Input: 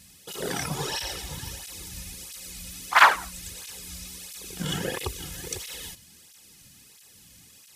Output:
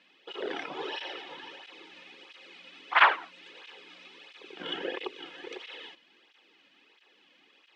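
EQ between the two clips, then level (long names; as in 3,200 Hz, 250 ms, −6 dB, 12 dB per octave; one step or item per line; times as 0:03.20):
dynamic equaliser 1,100 Hz, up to −5 dB, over −38 dBFS, Q 0.73
elliptic band-pass filter 320–3,100 Hz, stop band 70 dB
0.0 dB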